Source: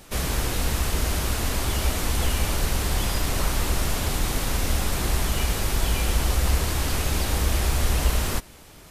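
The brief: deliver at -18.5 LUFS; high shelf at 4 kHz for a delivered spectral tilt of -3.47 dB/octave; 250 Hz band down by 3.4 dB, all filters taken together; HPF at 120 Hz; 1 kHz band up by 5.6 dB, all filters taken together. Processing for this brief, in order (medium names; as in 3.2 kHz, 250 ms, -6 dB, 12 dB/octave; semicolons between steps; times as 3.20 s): high-pass 120 Hz; peaking EQ 250 Hz -4.5 dB; peaking EQ 1 kHz +7.5 dB; treble shelf 4 kHz -4 dB; trim +9 dB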